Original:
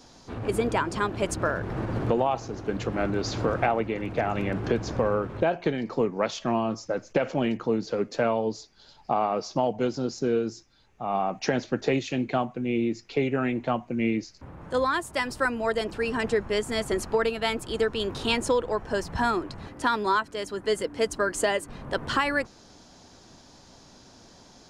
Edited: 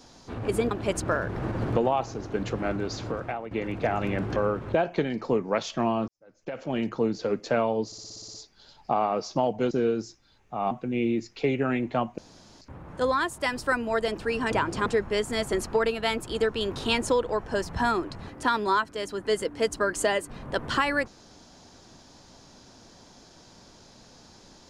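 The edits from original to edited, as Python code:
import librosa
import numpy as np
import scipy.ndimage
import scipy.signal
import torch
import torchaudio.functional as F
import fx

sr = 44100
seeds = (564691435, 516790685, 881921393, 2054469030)

y = fx.edit(x, sr, fx.move(start_s=0.71, length_s=0.34, to_s=16.25),
    fx.fade_out_to(start_s=2.78, length_s=1.07, floor_db=-13.0),
    fx.cut(start_s=4.7, length_s=0.34),
    fx.fade_in_span(start_s=6.76, length_s=0.8, curve='qua'),
    fx.stutter(start_s=8.54, slice_s=0.06, count=9),
    fx.cut(start_s=9.91, length_s=0.28),
    fx.cut(start_s=11.19, length_s=1.25),
    fx.room_tone_fill(start_s=13.91, length_s=0.43), tone=tone)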